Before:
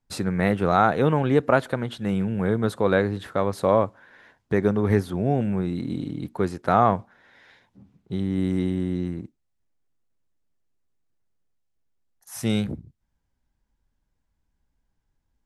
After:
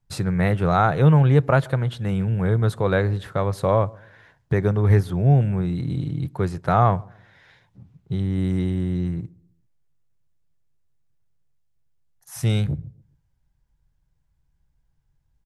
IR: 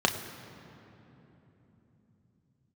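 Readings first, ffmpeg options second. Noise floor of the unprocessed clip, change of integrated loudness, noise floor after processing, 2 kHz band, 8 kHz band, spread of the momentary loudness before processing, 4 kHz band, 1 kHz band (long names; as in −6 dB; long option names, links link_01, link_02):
−76 dBFS, +2.5 dB, −68 dBFS, 0.0 dB, can't be measured, 10 LU, 0.0 dB, 0.0 dB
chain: -filter_complex "[0:a]lowshelf=frequency=180:width_type=q:width=3:gain=6,asplit=2[link_01][link_02];[link_02]adelay=133,lowpass=frequency=810:poles=1,volume=-23.5dB,asplit=2[link_03][link_04];[link_04]adelay=133,lowpass=frequency=810:poles=1,volume=0.4,asplit=2[link_05][link_06];[link_06]adelay=133,lowpass=frequency=810:poles=1,volume=0.4[link_07];[link_01][link_03][link_05][link_07]amix=inputs=4:normalize=0"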